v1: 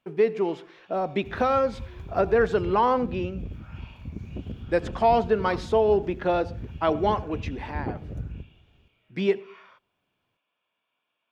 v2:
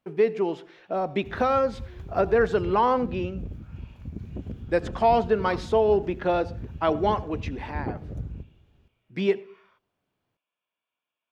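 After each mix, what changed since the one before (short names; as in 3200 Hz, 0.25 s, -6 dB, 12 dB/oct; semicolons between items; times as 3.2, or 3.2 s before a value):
first sound -9.0 dB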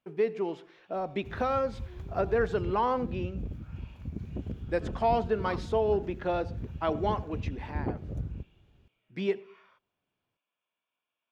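speech -6.0 dB; second sound: send off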